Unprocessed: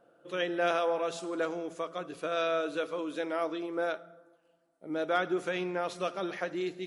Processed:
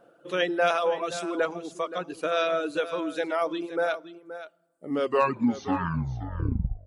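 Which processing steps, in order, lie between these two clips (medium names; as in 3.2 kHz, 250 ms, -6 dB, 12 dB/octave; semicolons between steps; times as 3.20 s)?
tape stop on the ending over 2.13 s; reverb removal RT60 1.8 s; delay 524 ms -13 dB; trim +6.5 dB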